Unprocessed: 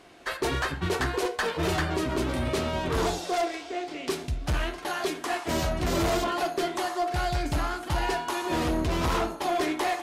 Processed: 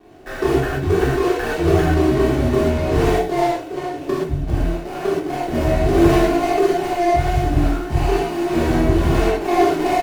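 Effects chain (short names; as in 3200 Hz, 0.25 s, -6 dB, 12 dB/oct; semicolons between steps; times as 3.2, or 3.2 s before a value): median filter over 41 samples; comb 2.7 ms, depth 39%; 3.21–5.6 AM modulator 210 Hz, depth 30%; vibrato 1.4 Hz 25 cents; non-linear reverb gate 0.15 s flat, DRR -8 dB; gain +3.5 dB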